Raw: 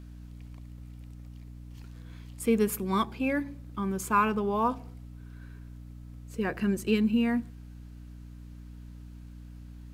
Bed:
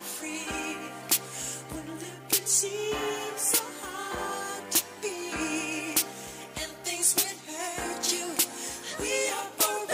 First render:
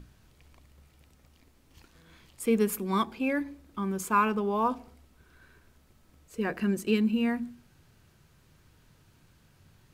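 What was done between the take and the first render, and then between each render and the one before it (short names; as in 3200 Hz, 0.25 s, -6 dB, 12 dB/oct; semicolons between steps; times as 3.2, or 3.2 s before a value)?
notches 60/120/180/240/300 Hz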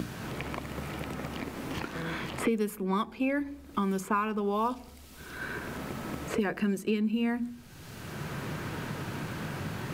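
three-band squash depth 100%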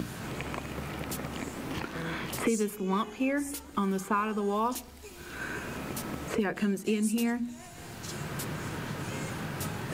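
add bed -15.5 dB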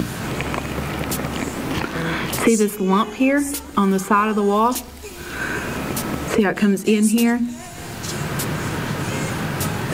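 gain +12 dB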